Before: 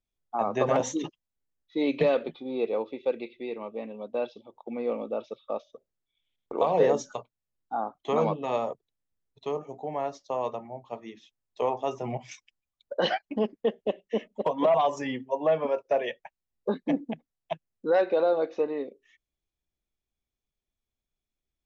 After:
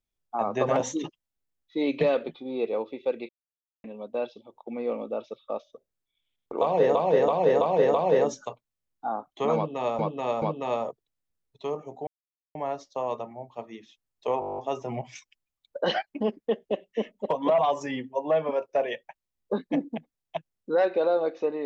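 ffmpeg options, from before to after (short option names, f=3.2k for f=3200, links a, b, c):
-filter_complex "[0:a]asplit=19[a][b][c][d][e][f][g][h][i][j][k][l][m][n][o][p][q][r][s];[a]atrim=end=3.29,asetpts=PTS-STARTPTS,afade=t=out:st=3.286:d=0.004:c=hsin[t];[b]atrim=start=3.29:end=3.84,asetpts=PTS-STARTPTS,volume=0[u];[c]atrim=start=3.84:end=6.952,asetpts=PTS-STARTPTS,afade=t=in:d=0.004:c=hsin[v];[d]atrim=start=6.618:end=6.952[w];[e]atrim=start=6.618:end=6.952[x];[f]atrim=start=6.618:end=6.952[y];[g]atrim=start=6.618:end=8.672[z];[h]atrim=start=8.238:end=8.672[aa];[i]atrim=start=8.238:end=9.89,asetpts=PTS-STARTPTS,afade=t=out:st=1.648:d=0.004:c=hsin,apad=pad_dur=0.48[ab];[j]atrim=start=9.89:end=11.762,asetpts=PTS-STARTPTS,afade=t=in:d=0.004:c=hsin[ac];[k]atrim=start=11.738:end=11.762[ad];[l]atrim=start=11.738:end=11.762[ae];[m]atrim=start=11.738:end=11.762[af];[n]atrim=start=11.738:end=11.762[ag];[o]atrim=start=11.738:end=11.762[ah];[p]atrim=start=11.738:end=11.762[ai];[q]atrim=start=11.738:end=11.762[aj];[r]atrim=start=11.738:end=11.762[ak];[s]atrim=start=11.738[al];[t][u][v]concat=n=3:v=0:a=1[am];[am][w]acrossfade=d=0.004:c1=hsin:c2=hsin[an];[an][x]acrossfade=d=0.004:c1=hsin:c2=hsin[ao];[ao][y]acrossfade=d=0.004:c1=hsin:c2=hsin[ap];[ap][z]acrossfade=d=0.004:c1=hsin:c2=hsin[aq];[aq][aa]acrossfade=d=0.004:c1=hsin:c2=hsin[ar];[ab][ac]concat=n=2:v=0:a=1[as];[ar][as]acrossfade=d=0.004:c1=hsin:c2=hsin[at];[at][ad]acrossfade=d=0.004:c1=hsin:c2=hsin[au];[au][ae]acrossfade=d=0.004:c1=hsin:c2=hsin[av];[av][af]acrossfade=d=0.004:c1=hsin:c2=hsin[aw];[aw][ag]acrossfade=d=0.004:c1=hsin:c2=hsin[ax];[ax][ah]acrossfade=d=0.004:c1=hsin:c2=hsin[ay];[ay][ai]acrossfade=d=0.004:c1=hsin:c2=hsin[az];[az][aj]acrossfade=d=0.004:c1=hsin:c2=hsin[ba];[ba][ak]acrossfade=d=0.004:c1=hsin:c2=hsin[bb];[bb][al]acrossfade=d=0.004:c1=hsin:c2=hsin"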